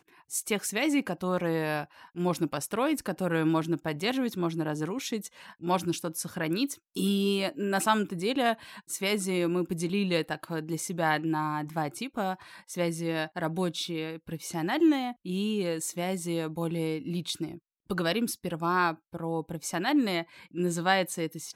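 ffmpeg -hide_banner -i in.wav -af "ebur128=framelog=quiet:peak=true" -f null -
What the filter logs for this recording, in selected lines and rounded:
Integrated loudness:
  I:         -30.0 LUFS
  Threshold: -40.1 LUFS
Loudness range:
  LRA:         2.8 LU
  Threshold: -50.1 LUFS
  LRA low:   -31.5 LUFS
  LRA high:  -28.7 LUFS
True peak:
  Peak:      -10.8 dBFS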